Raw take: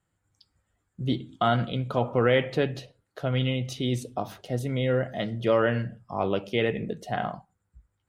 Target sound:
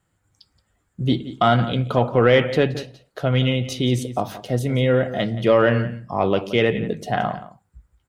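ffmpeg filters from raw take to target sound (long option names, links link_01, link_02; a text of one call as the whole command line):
ffmpeg -i in.wav -filter_complex "[0:a]asplit=2[link_01][link_02];[link_02]adelay=174.9,volume=-15dB,highshelf=frequency=4000:gain=-3.94[link_03];[link_01][link_03]amix=inputs=2:normalize=0,acontrast=86" out.wav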